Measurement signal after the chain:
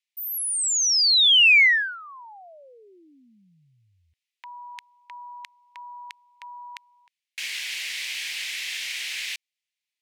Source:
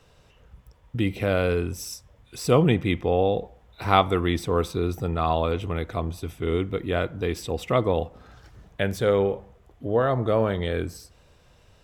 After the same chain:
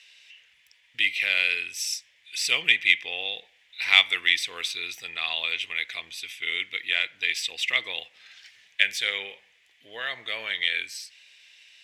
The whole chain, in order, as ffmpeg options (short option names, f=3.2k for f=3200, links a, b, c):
-af "bandpass=f=2k:t=q:w=2:csg=0,aexciter=amount=11.5:drive=6.8:freq=2k,volume=-3.5dB"